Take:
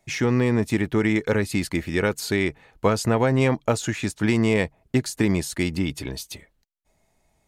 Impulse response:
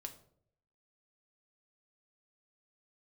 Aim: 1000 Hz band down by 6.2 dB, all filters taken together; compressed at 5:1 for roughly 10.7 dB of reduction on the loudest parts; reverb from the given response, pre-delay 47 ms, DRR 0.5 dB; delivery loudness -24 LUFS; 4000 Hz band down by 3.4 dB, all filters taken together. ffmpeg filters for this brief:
-filter_complex "[0:a]equalizer=f=1k:t=o:g=-8,equalizer=f=4k:t=o:g=-4,acompressor=threshold=-29dB:ratio=5,asplit=2[a][b];[1:a]atrim=start_sample=2205,adelay=47[c];[b][c]afir=irnorm=-1:irlink=0,volume=3.5dB[d];[a][d]amix=inputs=2:normalize=0,volume=6.5dB"

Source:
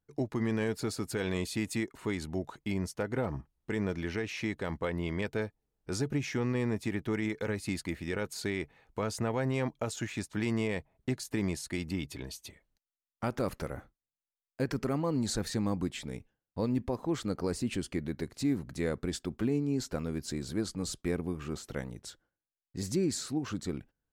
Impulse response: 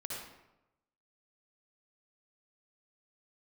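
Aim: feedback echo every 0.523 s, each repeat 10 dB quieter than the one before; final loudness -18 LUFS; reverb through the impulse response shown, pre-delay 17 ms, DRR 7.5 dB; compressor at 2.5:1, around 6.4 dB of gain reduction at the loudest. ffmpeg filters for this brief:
-filter_complex "[0:a]acompressor=threshold=-36dB:ratio=2.5,aecho=1:1:523|1046|1569|2092:0.316|0.101|0.0324|0.0104,asplit=2[a][b];[1:a]atrim=start_sample=2205,adelay=17[c];[b][c]afir=irnorm=-1:irlink=0,volume=-8dB[d];[a][d]amix=inputs=2:normalize=0,volume=20.5dB"

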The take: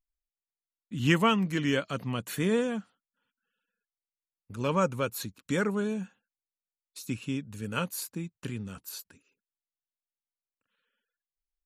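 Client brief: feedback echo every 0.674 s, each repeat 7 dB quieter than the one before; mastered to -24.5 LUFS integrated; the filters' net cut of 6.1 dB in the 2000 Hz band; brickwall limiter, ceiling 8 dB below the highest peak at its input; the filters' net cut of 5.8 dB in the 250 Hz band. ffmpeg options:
-af "equalizer=f=250:t=o:g=-8,equalizer=f=2k:t=o:g=-8,alimiter=limit=-23.5dB:level=0:latency=1,aecho=1:1:674|1348|2022|2696|3370:0.447|0.201|0.0905|0.0407|0.0183,volume=12dB"

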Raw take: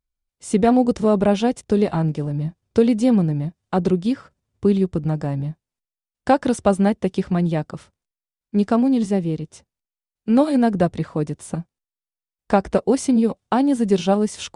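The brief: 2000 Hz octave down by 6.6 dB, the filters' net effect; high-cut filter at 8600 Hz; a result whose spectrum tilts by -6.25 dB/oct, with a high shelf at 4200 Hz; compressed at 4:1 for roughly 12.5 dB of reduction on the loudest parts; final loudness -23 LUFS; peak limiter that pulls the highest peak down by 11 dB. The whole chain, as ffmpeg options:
-af "lowpass=8.6k,equalizer=f=2k:t=o:g=-8.5,highshelf=f=4.2k:g=-4.5,acompressor=threshold=-27dB:ratio=4,volume=10dB,alimiter=limit=-13.5dB:level=0:latency=1"

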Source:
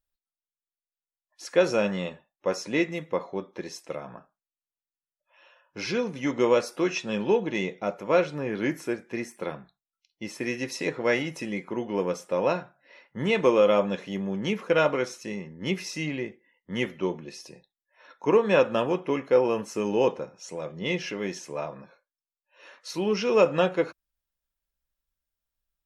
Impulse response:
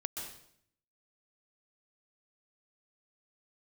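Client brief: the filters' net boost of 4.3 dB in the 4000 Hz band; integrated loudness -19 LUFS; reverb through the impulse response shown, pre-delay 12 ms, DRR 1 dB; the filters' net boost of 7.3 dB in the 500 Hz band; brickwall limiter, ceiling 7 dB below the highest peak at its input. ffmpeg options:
-filter_complex "[0:a]equalizer=f=500:t=o:g=8,equalizer=f=4k:t=o:g=6,alimiter=limit=-9.5dB:level=0:latency=1,asplit=2[a][b];[1:a]atrim=start_sample=2205,adelay=12[c];[b][c]afir=irnorm=-1:irlink=0,volume=-1.5dB[d];[a][d]amix=inputs=2:normalize=0,volume=2dB"

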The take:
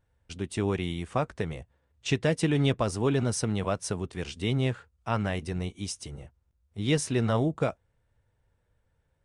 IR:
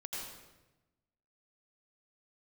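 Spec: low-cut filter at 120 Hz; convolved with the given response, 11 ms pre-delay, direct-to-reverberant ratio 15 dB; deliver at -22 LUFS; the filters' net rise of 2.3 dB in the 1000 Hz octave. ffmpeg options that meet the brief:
-filter_complex "[0:a]highpass=120,equalizer=f=1k:t=o:g=3,asplit=2[a][b];[1:a]atrim=start_sample=2205,adelay=11[c];[b][c]afir=irnorm=-1:irlink=0,volume=-15dB[d];[a][d]amix=inputs=2:normalize=0,volume=7.5dB"

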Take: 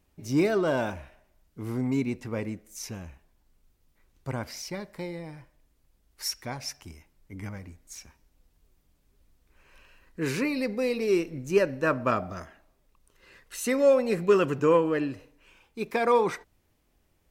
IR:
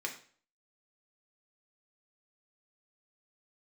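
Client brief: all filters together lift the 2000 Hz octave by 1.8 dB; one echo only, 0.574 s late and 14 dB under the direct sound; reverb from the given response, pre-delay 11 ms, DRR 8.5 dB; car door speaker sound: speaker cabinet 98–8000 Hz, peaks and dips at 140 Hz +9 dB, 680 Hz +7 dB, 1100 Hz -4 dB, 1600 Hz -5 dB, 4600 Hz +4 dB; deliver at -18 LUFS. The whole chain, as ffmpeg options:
-filter_complex "[0:a]equalizer=f=2k:t=o:g=5,aecho=1:1:574:0.2,asplit=2[a][b];[1:a]atrim=start_sample=2205,adelay=11[c];[b][c]afir=irnorm=-1:irlink=0,volume=-11dB[d];[a][d]amix=inputs=2:normalize=0,highpass=98,equalizer=f=140:t=q:w=4:g=9,equalizer=f=680:t=q:w=4:g=7,equalizer=f=1.1k:t=q:w=4:g=-4,equalizer=f=1.6k:t=q:w=4:g=-5,equalizer=f=4.6k:t=q:w=4:g=4,lowpass=f=8k:w=0.5412,lowpass=f=8k:w=1.3066,volume=8dB"

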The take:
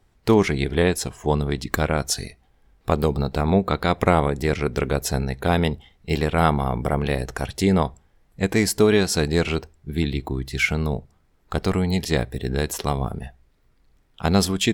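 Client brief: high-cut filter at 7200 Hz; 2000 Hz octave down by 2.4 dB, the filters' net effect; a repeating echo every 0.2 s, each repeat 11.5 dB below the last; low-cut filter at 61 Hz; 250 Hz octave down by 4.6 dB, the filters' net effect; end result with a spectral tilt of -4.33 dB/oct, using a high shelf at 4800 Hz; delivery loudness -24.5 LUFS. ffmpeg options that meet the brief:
-af "highpass=61,lowpass=7.2k,equalizer=f=250:t=o:g=-7,equalizer=f=2k:t=o:g=-4.5,highshelf=f=4.8k:g=9,aecho=1:1:200|400|600:0.266|0.0718|0.0194"

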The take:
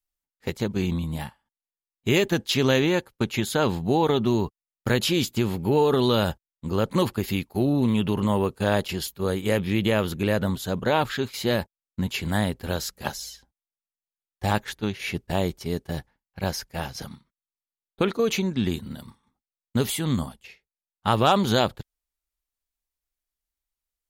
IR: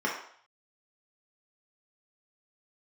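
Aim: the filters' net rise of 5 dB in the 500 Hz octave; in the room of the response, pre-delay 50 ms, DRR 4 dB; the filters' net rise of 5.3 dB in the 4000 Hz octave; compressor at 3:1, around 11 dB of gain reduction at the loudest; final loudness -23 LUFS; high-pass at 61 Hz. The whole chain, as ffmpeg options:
-filter_complex "[0:a]highpass=61,equalizer=f=500:t=o:g=6,equalizer=f=4k:t=o:g=6.5,acompressor=threshold=-28dB:ratio=3,asplit=2[a][b];[1:a]atrim=start_sample=2205,adelay=50[c];[b][c]afir=irnorm=-1:irlink=0,volume=-14.5dB[d];[a][d]amix=inputs=2:normalize=0,volume=6.5dB"

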